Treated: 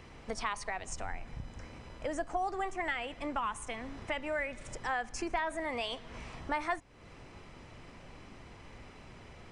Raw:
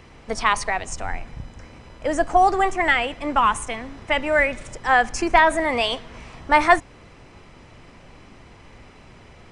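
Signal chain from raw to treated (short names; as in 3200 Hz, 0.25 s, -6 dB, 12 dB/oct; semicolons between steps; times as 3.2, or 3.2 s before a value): compressor 2.5:1, threshold -32 dBFS, peak gain reduction 15 dB; gain -5 dB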